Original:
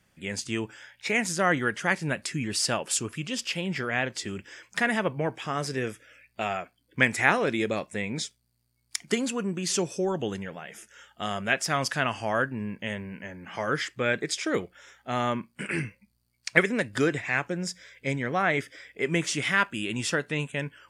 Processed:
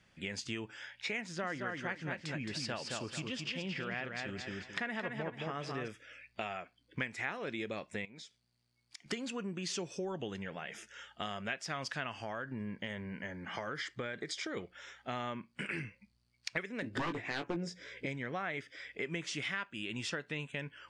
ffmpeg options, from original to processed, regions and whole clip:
ffmpeg -i in.wav -filter_complex "[0:a]asettb=1/sr,asplit=3[link_01][link_02][link_03];[link_01]atrim=end=1.214[link_04];[link_02]atrim=start=1.21:end=5.88,asetpts=PTS-STARTPTS,afade=type=in:duration=0.004:curve=qsin,afade=type=out:start_time=4.666:duration=0.004:curve=qsin,lowpass=frequency=3800:poles=1,aecho=1:1:219|438|657:0.562|0.135|0.0324,atrim=end_sample=205947[link_05];[link_03]atrim=start=5.876[link_06];[link_04][link_05]acrossfade=duration=0.004:curve1=hsin:curve2=qsin[link_07];[link_07][link_06]acrossfade=duration=0.004:curve1=qsin:curve2=hsin,asettb=1/sr,asplit=3[link_08][link_09][link_10];[link_08]atrim=end=8.054[link_11];[link_09]atrim=start=8.05:end=9.06,asetpts=PTS-STARTPTS,afade=type=in:duration=0.004:curve=qsin,afade=type=out:start_time=1.006:duration=0.004:curve=qsin,highpass=frequency=150:poles=1,acompressor=threshold=-50dB:ratio=3:attack=3.2:release=140:knee=1:detection=peak[link_12];[link_10]atrim=start=9.056[link_13];[link_11][link_12]acrossfade=duration=0.004:curve1=hsin:curve2=qsin[link_14];[link_14][link_13]acrossfade=duration=0.004:curve1=qsin:curve2=hsin,asettb=1/sr,asplit=3[link_15][link_16][link_17];[link_15]atrim=end=12.224[link_18];[link_16]atrim=start=12.22:end=14.57,asetpts=PTS-STARTPTS,afade=type=in:duration=0.004:curve=qsin,afade=type=out:start_time=2.346:duration=0.004:curve=qsin,bandreject=frequency=2600:width=5.4,acompressor=threshold=-28dB:ratio=4:attack=3.2:release=140:knee=1:detection=peak[link_19];[link_17]atrim=start=14.566[link_20];[link_18][link_19]acrossfade=duration=0.004:curve1=hsin:curve2=qsin[link_21];[link_21][link_20]acrossfade=duration=0.004:curve1=qsin:curve2=hsin,asettb=1/sr,asplit=3[link_22][link_23][link_24];[link_22]atrim=end=16.824[link_25];[link_23]atrim=start=16.82:end=18.06,asetpts=PTS-STARTPTS,afade=type=in:duration=0.004:curve=qsin,afade=type=out:start_time=1.236:duration=0.004:curve=qsin,equalizer=frequency=330:width=0.62:gain=14.5,aeval=exprs='0.211*(abs(mod(val(0)/0.211+3,4)-2)-1)':channel_layout=same,asplit=2[link_26][link_27];[link_27]adelay=18,volume=-6.5dB[link_28];[link_26][link_28]amix=inputs=2:normalize=0,atrim=end_sample=54684[link_29];[link_24]atrim=start=18.056[link_30];[link_25][link_29]acrossfade=duration=0.004:curve1=hsin:curve2=qsin[link_31];[link_31][link_30]acrossfade=duration=0.004:curve1=qsin:curve2=hsin,lowpass=4000,highshelf=frequency=3000:gain=9,acompressor=threshold=-36dB:ratio=4,volume=-1.5dB" out.wav

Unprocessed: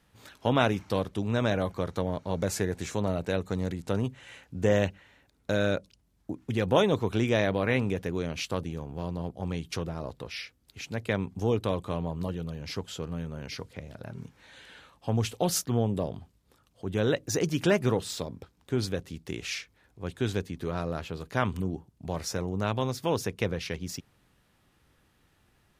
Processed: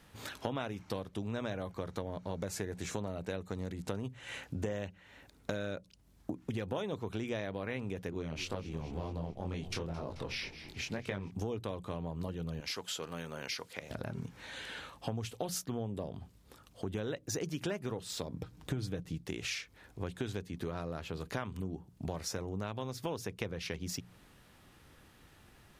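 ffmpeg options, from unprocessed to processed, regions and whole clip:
ffmpeg -i in.wav -filter_complex "[0:a]asettb=1/sr,asplit=3[link_01][link_02][link_03];[link_01]atrim=end=8.104[link_04];[link_02]atrim=start=8.1:end=11.31,asetpts=PTS-STARTPTS,afade=type=in:duration=0.004:curve=qsin,afade=type=out:start_time=3.206:duration=0.004:curve=qsin,highshelf=frequency=9000:gain=-6.5,flanger=delay=20:depth=5.7:speed=2,asplit=6[link_05][link_06][link_07][link_08][link_09][link_10];[link_06]adelay=217,afreqshift=-80,volume=-16dB[link_11];[link_07]adelay=434,afreqshift=-160,volume=-20.9dB[link_12];[link_08]adelay=651,afreqshift=-240,volume=-25.8dB[link_13];[link_09]adelay=868,afreqshift=-320,volume=-30.6dB[link_14];[link_10]adelay=1085,afreqshift=-400,volume=-35.5dB[link_15];[link_05][link_11][link_12][link_13][link_14][link_15]amix=inputs=6:normalize=0,atrim=end_sample=141561[link_16];[link_03]atrim=start=11.306[link_17];[link_04][link_16]acrossfade=duration=0.004:curve1=hsin:curve2=qsin[link_18];[link_18][link_17]acrossfade=duration=0.004:curve1=qsin:curve2=hsin,asettb=1/sr,asplit=3[link_19][link_20][link_21];[link_19]atrim=end=12.604[link_22];[link_20]atrim=start=12.6:end=13.91,asetpts=PTS-STARTPTS,afade=type=in:duration=0.004:curve=qsin,afade=type=out:start_time=1.306:duration=0.004:curve=qsin,highpass=frequency=940:poles=1,highshelf=frequency=12000:gain=4[link_23];[link_21]atrim=start=13.906[link_24];[link_22][link_23]acrossfade=duration=0.004:curve1=hsin:curve2=qsin[link_25];[link_25][link_24]acrossfade=duration=0.004:curve1=qsin:curve2=hsin,asettb=1/sr,asplit=3[link_26][link_27][link_28];[link_26]atrim=end=18.344[link_29];[link_27]atrim=start=18.34:end=19.21,asetpts=PTS-STARTPTS,afade=type=in:duration=0.004:curve=qsin,afade=type=out:start_time=0.866:duration=0.004:curve=qsin,lowshelf=frequency=230:gain=9.5,aecho=1:1:6.5:0.44,atrim=end_sample=38367[link_30];[link_28]atrim=start=19.206[link_31];[link_29][link_30]acrossfade=duration=0.004:curve1=hsin:curve2=qsin[link_32];[link_32][link_31]acrossfade=duration=0.004:curve1=qsin:curve2=hsin,bandreject=frequency=60:width_type=h:width=6,bandreject=frequency=120:width_type=h:width=6,bandreject=frequency=180:width_type=h:width=6,acompressor=threshold=-42dB:ratio=6,volume=6.5dB" out.wav

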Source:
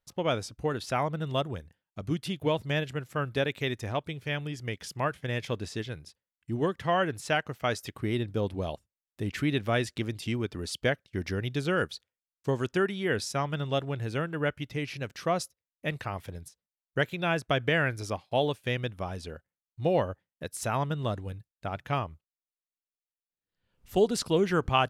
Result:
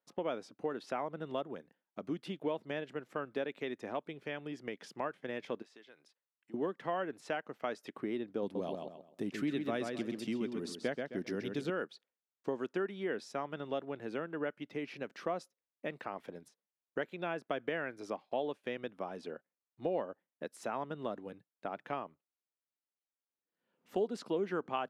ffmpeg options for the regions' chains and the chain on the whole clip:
ffmpeg -i in.wav -filter_complex "[0:a]asettb=1/sr,asplit=3[link_01][link_02][link_03];[link_01]atrim=end=5.624[link_04];[link_02]atrim=start=5.62:end=6.54,asetpts=PTS-STARTPTS,afade=type=in:duration=0.004:curve=qsin,afade=type=out:start_time=0.916:duration=0.004:curve=qsin,highpass=frequency=1100:poles=1,acompressor=threshold=-51dB:ratio=5:attack=3.2:release=140:knee=1:detection=peak[link_05];[link_03]atrim=start=6.536[link_06];[link_04][link_05]acrossfade=duration=0.004:curve1=hsin:curve2=qsin[link_07];[link_07][link_06]acrossfade=duration=0.004:curve1=qsin:curve2=hsin,asettb=1/sr,asplit=3[link_08][link_09][link_10];[link_08]atrim=end=8.424[link_11];[link_09]atrim=start=8.42:end=11.7,asetpts=PTS-STARTPTS,afade=type=in:duration=0.004:curve=qsin,afade=type=out:start_time=3.276:duration=0.004:curve=qsin,bass=frequency=250:gain=7,treble=frequency=4000:gain=11,asplit=2[link_12][link_13];[link_13]adelay=131,lowpass=frequency=4300:poles=1,volume=-5.5dB,asplit=2[link_14][link_15];[link_15]adelay=131,lowpass=frequency=4300:poles=1,volume=0.27,asplit=2[link_16][link_17];[link_17]adelay=131,lowpass=frequency=4300:poles=1,volume=0.27,asplit=2[link_18][link_19];[link_19]adelay=131,lowpass=frequency=4300:poles=1,volume=0.27[link_20];[link_12][link_14][link_16][link_18][link_20]amix=inputs=5:normalize=0,atrim=end_sample=144648[link_21];[link_10]atrim=start=11.696[link_22];[link_11][link_21]acrossfade=duration=0.004:curve1=hsin:curve2=qsin[link_23];[link_23][link_22]acrossfade=duration=0.004:curve1=qsin:curve2=hsin,highpass=frequency=220:width=0.5412,highpass=frequency=220:width=1.3066,acompressor=threshold=-38dB:ratio=2,lowpass=frequency=1300:poles=1,volume=1dB" out.wav

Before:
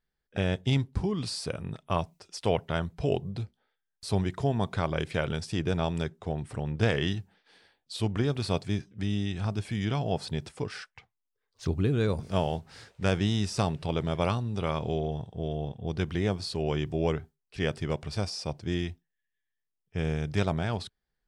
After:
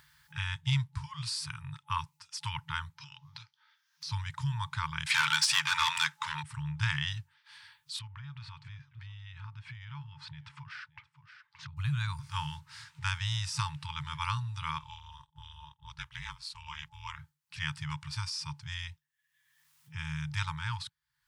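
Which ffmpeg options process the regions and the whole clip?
ffmpeg -i in.wav -filter_complex "[0:a]asettb=1/sr,asplit=3[link_01][link_02][link_03];[link_01]atrim=end=2.974[link_04];[link_02]atrim=start=2.97:end=4.12,asetpts=PTS-STARTPTS,afade=type=in:duration=0.004:curve=qsin,afade=type=out:start_time=1.146:duration=0.004:curve=qsin,highpass=330,highshelf=frequency=6800:width_type=q:width=3:gain=-6.5,acompressor=threshold=-38dB:ratio=2.5:attack=3.2:release=140:knee=1:detection=peak[link_05];[link_03]atrim=start=4.116[link_06];[link_04][link_05]acrossfade=duration=0.004:curve1=hsin:curve2=qsin[link_07];[link_07][link_06]acrossfade=duration=0.004:curve1=qsin:curve2=hsin,asettb=1/sr,asplit=3[link_08][link_09][link_10];[link_08]atrim=end=5.064[link_11];[link_09]atrim=start=5.06:end=6.43,asetpts=PTS-STARTPTS,afade=type=in:duration=0.004:curve=qsin,afade=type=out:start_time=1.366:duration=0.004:curve=qsin,highpass=frequency=200:width=0.5412,highpass=frequency=200:width=1.3066,asplit=2[link_12][link_13];[link_13]highpass=frequency=720:poles=1,volume=25dB,asoftclip=type=tanh:threshold=-12dB[link_14];[link_12][link_14]amix=inputs=2:normalize=0,lowpass=frequency=8000:poles=1,volume=-6dB[link_15];[link_10]atrim=start=6.426[link_16];[link_11][link_15]acrossfade=duration=0.004:curve1=hsin:curve2=qsin[link_17];[link_17][link_16]acrossfade=duration=0.004:curve1=qsin:curve2=hsin,asettb=1/sr,asplit=3[link_18][link_19][link_20];[link_18]atrim=end=7.994[link_21];[link_19]atrim=start=7.99:end=11.77,asetpts=PTS-STARTPTS,afade=type=in:duration=0.004:curve=qsin,afade=type=out:start_time=3.776:duration=0.004:curve=qsin,lowpass=2800,acompressor=threshold=-39dB:ratio=3:attack=3.2:release=140:knee=1:detection=peak,aecho=1:1:574:0.0794,atrim=end_sample=166698[link_22];[link_20]atrim=start=11.766[link_23];[link_21][link_22]acrossfade=duration=0.004:curve1=hsin:curve2=qsin[link_24];[link_24][link_23]acrossfade=duration=0.004:curve1=qsin:curve2=hsin,asettb=1/sr,asplit=3[link_25][link_26][link_27];[link_25]atrim=end=14.784[link_28];[link_26]atrim=start=14.78:end=17.19,asetpts=PTS-STARTPTS,afade=type=in:duration=0.004:curve=qsin,afade=type=out:start_time=2.406:duration=0.004:curve=qsin,agate=range=-33dB:threshold=-33dB:ratio=3:release=100:detection=peak,aeval=exprs='val(0)*sin(2*PI*140*n/s)':channel_layout=same[link_29];[link_27]atrim=start=17.186[link_30];[link_28][link_29]acrossfade=duration=0.004:curve1=hsin:curve2=qsin[link_31];[link_31][link_30]acrossfade=duration=0.004:curve1=qsin:curve2=hsin,afftfilt=real='re*(1-between(b*sr/4096,160,860))':imag='im*(1-between(b*sr/4096,160,860))':win_size=4096:overlap=0.75,highpass=120,acompressor=mode=upward:threshold=-43dB:ratio=2.5" out.wav

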